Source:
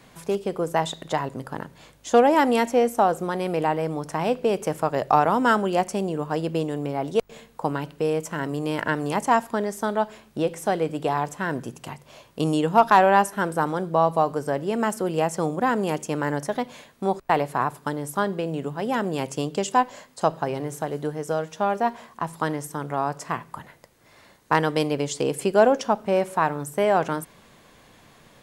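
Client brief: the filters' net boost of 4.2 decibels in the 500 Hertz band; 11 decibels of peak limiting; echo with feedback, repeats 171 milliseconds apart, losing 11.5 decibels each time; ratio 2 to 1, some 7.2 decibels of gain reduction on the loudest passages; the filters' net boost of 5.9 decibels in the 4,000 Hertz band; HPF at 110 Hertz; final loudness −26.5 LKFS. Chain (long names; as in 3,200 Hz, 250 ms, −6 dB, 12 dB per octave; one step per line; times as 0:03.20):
high-pass filter 110 Hz
parametric band 500 Hz +5 dB
parametric band 4,000 Hz +8 dB
downward compressor 2 to 1, threshold −21 dBFS
brickwall limiter −16.5 dBFS
repeating echo 171 ms, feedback 27%, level −11.5 dB
level +1.5 dB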